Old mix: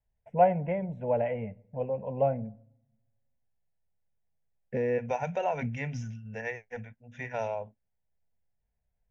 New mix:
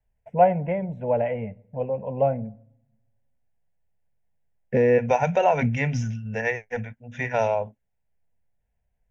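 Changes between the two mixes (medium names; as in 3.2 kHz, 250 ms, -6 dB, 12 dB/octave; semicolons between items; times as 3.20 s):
first voice +4.5 dB; second voice +10.0 dB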